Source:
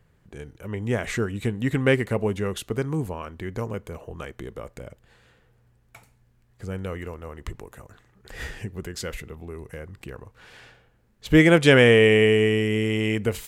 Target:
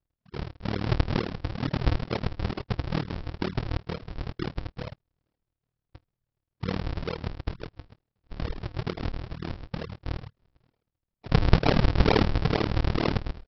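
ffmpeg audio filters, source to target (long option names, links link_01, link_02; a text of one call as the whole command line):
ffmpeg -i in.wav -filter_complex "[0:a]afftdn=noise_reduction=28:noise_floor=-35,aecho=1:1:6.2:0.4,acrossover=split=1000[link_01][link_02];[link_01]acompressor=threshold=-31dB:ratio=12[link_03];[link_02]alimiter=limit=-14dB:level=0:latency=1:release=43[link_04];[link_03][link_04]amix=inputs=2:normalize=0,tremolo=f=38:d=0.974,aresample=11025,acrusher=samples=31:mix=1:aa=0.000001:lfo=1:lforange=49.6:lforate=2.2,aresample=44100,volume=9dB" out.wav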